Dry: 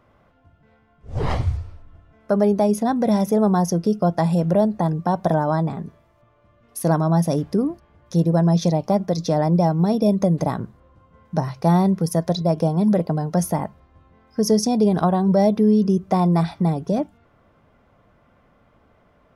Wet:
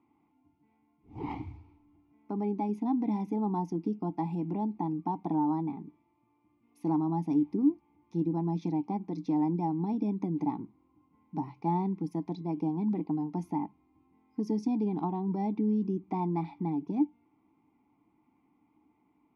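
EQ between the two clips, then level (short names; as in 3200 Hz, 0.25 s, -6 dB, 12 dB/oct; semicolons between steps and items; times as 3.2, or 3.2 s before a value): vowel filter u; low shelf 250 Hz +4.5 dB; notch 540 Hz, Q 13; 0.0 dB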